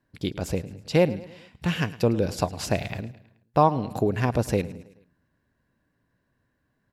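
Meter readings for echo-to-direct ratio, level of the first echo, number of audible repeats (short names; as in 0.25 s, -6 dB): -17.0 dB, -18.0 dB, 3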